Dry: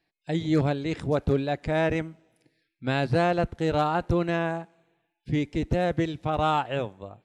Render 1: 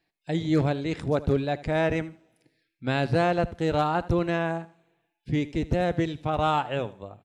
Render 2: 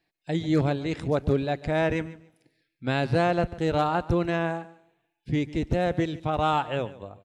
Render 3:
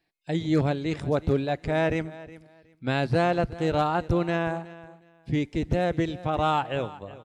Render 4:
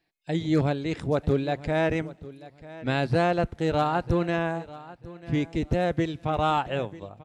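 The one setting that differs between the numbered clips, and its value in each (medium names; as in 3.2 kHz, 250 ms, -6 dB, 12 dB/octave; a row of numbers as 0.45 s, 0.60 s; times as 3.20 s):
feedback delay, time: 79 ms, 143 ms, 366 ms, 942 ms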